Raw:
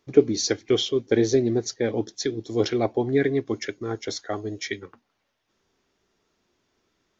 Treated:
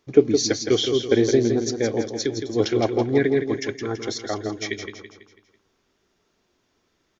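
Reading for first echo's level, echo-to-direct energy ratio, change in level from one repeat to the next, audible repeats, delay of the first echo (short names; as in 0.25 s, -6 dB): -7.0 dB, -6.0 dB, -7.0 dB, 4, 0.165 s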